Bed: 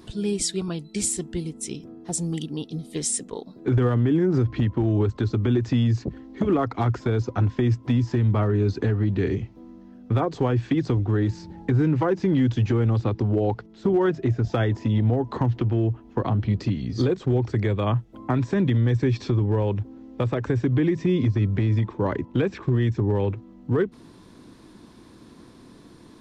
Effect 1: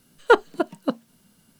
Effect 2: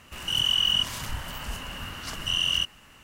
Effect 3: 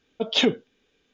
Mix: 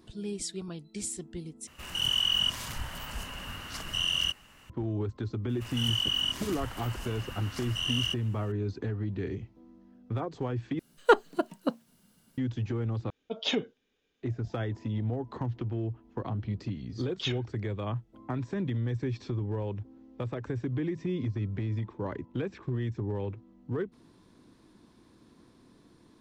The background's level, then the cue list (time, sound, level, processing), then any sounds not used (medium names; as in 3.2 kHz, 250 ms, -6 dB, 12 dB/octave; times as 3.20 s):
bed -10.5 dB
1.67 s: replace with 2 -3.5 dB
5.49 s: add 2 -6 dB
10.79 s: replace with 1 -5 dB
13.10 s: replace with 3 -9 dB
16.87 s: add 3 -12 dB + high-pass 1.2 kHz 24 dB/octave